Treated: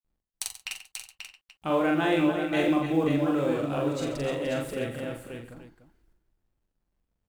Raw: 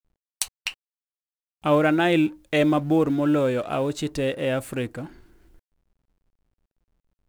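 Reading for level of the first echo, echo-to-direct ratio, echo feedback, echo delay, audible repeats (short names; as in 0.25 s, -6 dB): -1.5 dB, 2.0 dB, no steady repeat, 43 ms, 13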